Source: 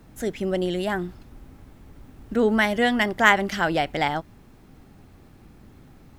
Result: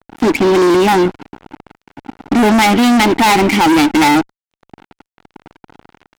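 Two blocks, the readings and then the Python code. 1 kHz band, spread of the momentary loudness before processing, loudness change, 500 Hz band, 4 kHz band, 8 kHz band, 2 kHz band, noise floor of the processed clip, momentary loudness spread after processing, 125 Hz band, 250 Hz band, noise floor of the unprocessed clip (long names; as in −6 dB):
+12.5 dB, 12 LU, +11.5 dB, +10.5 dB, +11.5 dB, +17.0 dB, +6.0 dB, below −85 dBFS, 6 LU, +10.0 dB, +15.0 dB, −51 dBFS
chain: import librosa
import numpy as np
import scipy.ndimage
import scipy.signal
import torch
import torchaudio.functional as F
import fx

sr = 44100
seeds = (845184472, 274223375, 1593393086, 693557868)

y = fx.vowel_filter(x, sr, vowel='u')
y = fx.fuzz(y, sr, gain_db=47.0, gate_db=-55.0)
y = fx.vibrato(y, sr, rate_hz=4.0, depth_cents=25.0)
y = F.gain(torch.from_numpy(y), 4.5).numpy()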